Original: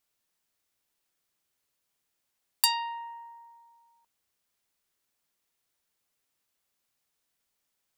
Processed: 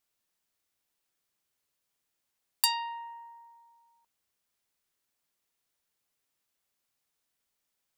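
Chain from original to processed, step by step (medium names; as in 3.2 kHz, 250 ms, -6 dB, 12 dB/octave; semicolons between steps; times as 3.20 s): 2.88–3.55 s: high-pass 190 Hz; trim -2 dB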